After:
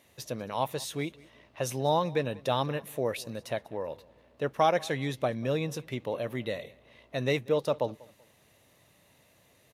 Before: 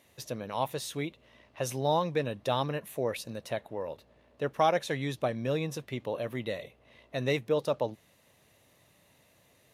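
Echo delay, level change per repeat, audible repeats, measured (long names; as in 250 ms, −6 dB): 192 ms, −10.0 dB, 2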